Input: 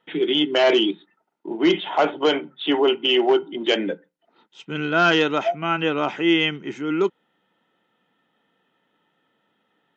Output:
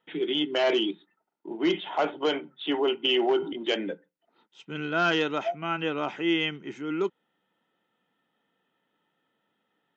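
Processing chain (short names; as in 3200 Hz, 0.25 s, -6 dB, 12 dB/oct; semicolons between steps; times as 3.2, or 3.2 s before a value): 3.04–3.53 fast leveller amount 50%; gain -7 dB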